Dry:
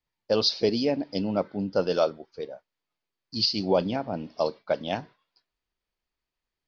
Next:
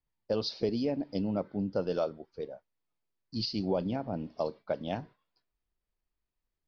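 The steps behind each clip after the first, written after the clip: tilt -2 dB/oct; compressor 2:1, threshold -23 dBFS, peak gain reduction 5 dB; gain -5.5 dB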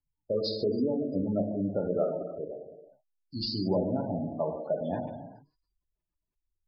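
non-linear reverb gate 0.46 s falling, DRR 0.5 dB; spectral gate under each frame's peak -20 dB strong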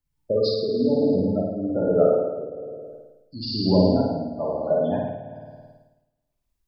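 on a send: flutter echo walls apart 9.3 m, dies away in 1.3 s; on the sum: tremolo triangle 1.1 Hz, depth 65%; gain +7.5 dB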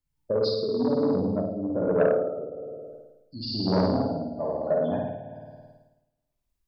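core saturation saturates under 660 Hz; gain -2.5 dB

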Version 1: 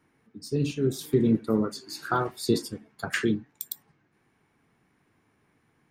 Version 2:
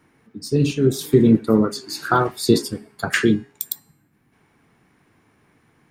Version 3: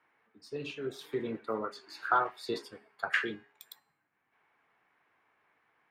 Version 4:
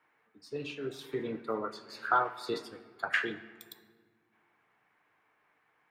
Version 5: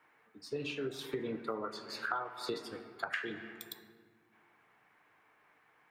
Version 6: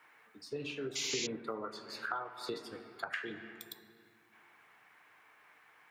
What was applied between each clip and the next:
spectral gain 3.79–4.33, 320–10000 Hz -7 dB; de-hum 410 Hz, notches 32; gain +8.5 dB
three-band isolator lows -22 dB, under 540 Hz, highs -20 dB, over 3300 Hz; gain -7 dB
shoebox room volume 2000 m³, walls mixed, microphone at 0.46 m
compressor 6:1, threshold -38 dBFS, peak gain reduction 15.5 dB; gain +4 dB
painted sound noise, 0.95–1.27, 2000–7300 Hz -35 dBFS; mismatched tape noise reduction encoder only; gain -2 dB

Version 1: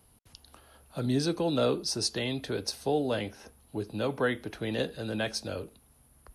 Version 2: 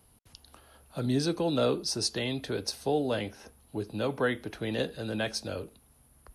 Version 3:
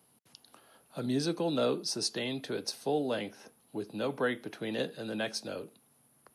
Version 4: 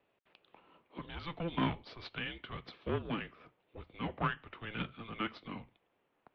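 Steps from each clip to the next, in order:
nothing audible
HPF 140 Hz 24 dB/oct; gain -2.5 dB
added harmonics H 3 -15 dB, 4 -19 dB, 5 -34 dB, 6 -20 dB, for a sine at -18 dBFS; mistuned SSB -340 Hz 570–3400 Hz; gain +4 dB

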